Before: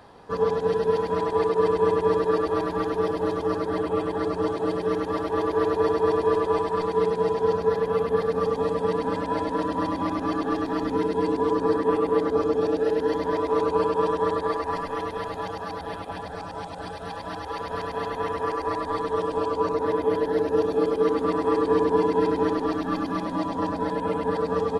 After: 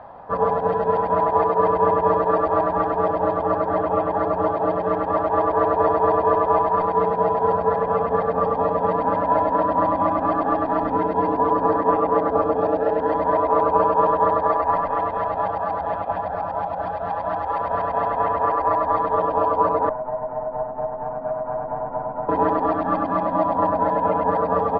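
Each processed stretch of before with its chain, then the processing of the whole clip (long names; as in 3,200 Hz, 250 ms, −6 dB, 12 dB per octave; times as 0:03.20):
0:19.89–0:22.29: lower of the sound and its delayed copy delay 8 ms + low-pass filter 1,100 Hz + tuned comb filter 210 Hz, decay 0.16 s, harmonics odd, mix 80%
whole clip: low-pass filter 1,200 Hz 12 dB per octave; low shelf with overshoot 510 Hz −6 dB, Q 3; level +9 dB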